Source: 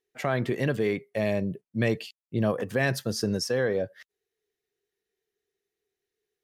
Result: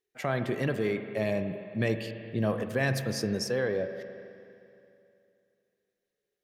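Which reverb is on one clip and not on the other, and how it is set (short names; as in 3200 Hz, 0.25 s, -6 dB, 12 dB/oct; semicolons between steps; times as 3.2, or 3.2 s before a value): spring tank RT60 2.7 s, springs 37/44 ms, chirp 75 ms, DRR 7.5 dB; gain -3 dB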